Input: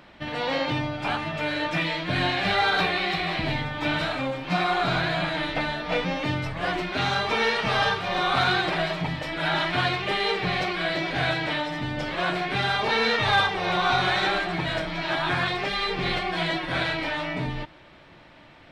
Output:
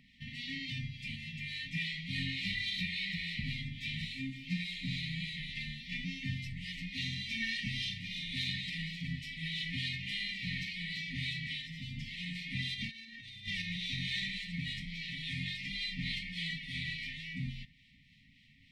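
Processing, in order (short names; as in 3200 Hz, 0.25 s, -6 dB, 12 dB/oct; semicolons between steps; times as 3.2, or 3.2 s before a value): FFT band-reject 270–1800 Hz; 12.74–13.62 negative-ratio compressor -33 dBFS, ratio -0.5; harmonic tremolo 3.5 Hz, depth 50%, crossover 2100 Hz; gain -6.5 dB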